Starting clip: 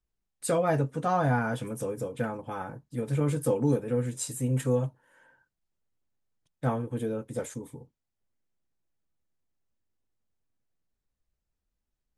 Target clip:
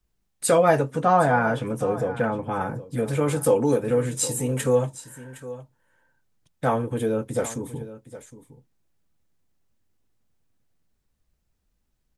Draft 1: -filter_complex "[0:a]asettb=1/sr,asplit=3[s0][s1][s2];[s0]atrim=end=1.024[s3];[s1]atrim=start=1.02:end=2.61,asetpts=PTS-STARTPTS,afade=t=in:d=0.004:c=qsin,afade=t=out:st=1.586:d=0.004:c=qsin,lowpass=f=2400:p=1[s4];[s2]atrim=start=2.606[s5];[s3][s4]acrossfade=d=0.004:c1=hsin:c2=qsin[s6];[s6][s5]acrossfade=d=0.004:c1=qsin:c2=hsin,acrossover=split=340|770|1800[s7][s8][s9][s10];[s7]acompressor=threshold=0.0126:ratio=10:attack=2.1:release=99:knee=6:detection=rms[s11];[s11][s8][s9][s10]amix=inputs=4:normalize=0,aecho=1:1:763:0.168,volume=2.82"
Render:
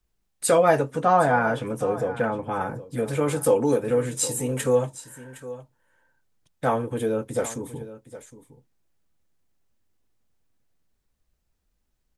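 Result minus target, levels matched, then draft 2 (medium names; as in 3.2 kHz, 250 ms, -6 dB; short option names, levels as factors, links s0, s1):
125 Hz band -2.5 dB
-filter_complex "[0:a]asettb=1/sr,asplit=3[s0][s1][s2];[s0]atrim=end=1.024[s3];[s1]atrim=start=1.02:end=2.61,asetpts=PTS-STARTPTS,afade=t=in:d=0.004:c=qsin,afade=t=out:st=1.586:d=0.004:c=qsin,lowpass=f=2400:p=1[s4];[s2]atrim=start=2.606[s5];[s3][s4]acrossfade=d=0.004:c1=hsin:c2=qsin[s6];[s6][s5]acrossfade=d=0.004:c1=qsin:c2=hsin,acrossover=split=340|770|1800[s7][s8][s9][s10];[s7]acompressor=threshold=0.0126:ratio=10:attack=2.1:release=99:knee=6:detection=rms,equalizer=f=150:t=o:w=2.5:g=3.5[s11];[s11][s8][s9][s10]amix=inputs=4:normalize=0,aecho=1:1:763:0.168,volume=2.82"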